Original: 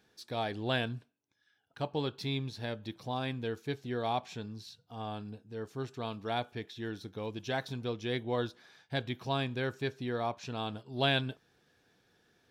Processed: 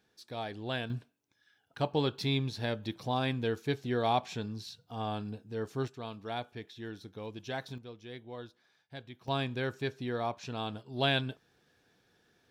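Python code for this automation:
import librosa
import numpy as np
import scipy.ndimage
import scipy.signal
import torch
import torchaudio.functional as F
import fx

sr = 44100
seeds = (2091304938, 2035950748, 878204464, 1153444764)

y = fx.gain(x, sr, db=fx.steps((0.0, -4.0), (0.9, 4.0), (5.88, -3.5), (7.78, -11.5), (9.28, 0.0)))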